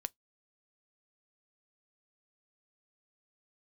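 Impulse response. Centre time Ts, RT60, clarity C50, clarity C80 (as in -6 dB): 1 ms, 0.15 s, 38.0 dB, 52.5 dB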